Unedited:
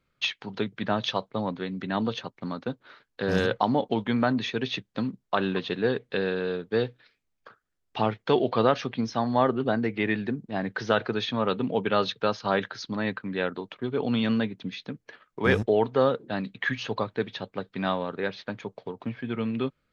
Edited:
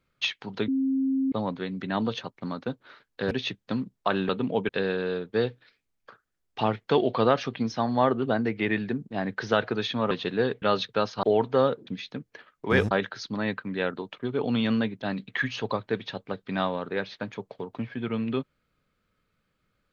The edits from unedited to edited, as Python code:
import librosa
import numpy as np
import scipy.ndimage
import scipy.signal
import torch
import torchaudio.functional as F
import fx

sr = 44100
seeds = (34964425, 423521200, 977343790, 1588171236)

y = fx.edit(x, sr, fx.bleep(start_s=0.68, length_s=0.64, hz=267.0, db=-22.0),
    fx.cut(start_s=3.31, length_s=1.27),
    fx.swap(start_s=5.56, length_s=0.51, other_s=11.49, other_length_s=0.4),
    fx.swap(start_s=12.5, length_s=2.11, other_s=15.65, other_length_s=0.64), tone=tone)